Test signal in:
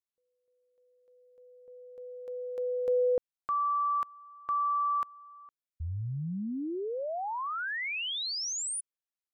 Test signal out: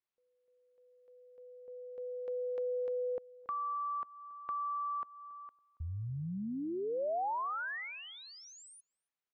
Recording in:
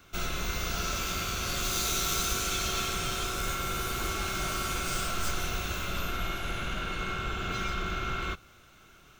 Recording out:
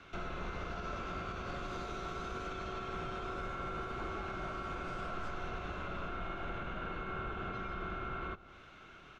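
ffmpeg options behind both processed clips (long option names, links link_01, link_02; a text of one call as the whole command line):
ffmpeg -i in.wav -filter_complex "[0:a]lowpass=3000,lowshelf=frequency=170:gain=-6.5,alimiter=level_in=7.5dB:limit=-24dB:level=0:latency=1:release=226,volume=-7.5dB,acrossover=split=680|1400[link_01][link_02][link_03];[link_01]acompressor=threshold=-41dB:ratio=4[link_04];[link_02]acompressor=threshold=-43dB:ratio=4[link_05];[link_03]acompressor=threshold=-58dB:ratio=4[link_06];[link_04][link_05][link_06]amix=inputs=3:normalize=0,asplit=2[link_07][link_08];[link_08]adelay=279,lowpass=frequency=1300:poles=1,volume=-19dB,asplit=2[link_09][link_10];[link_10]adelay=279,lowpass=frequency=1300:poles=1,volume=0.31,asplit=2[link_11][link_12];[link_12]adelay=279,lowpass=frequency=1300:poles=1,volume=0.31[link_13];[link_09][link_11][link_13]amix=inputs=3:normalize=0[link_14];[link_07][link_14]amix=inputs=2:normalize=0,volume=3.5dB" out.wav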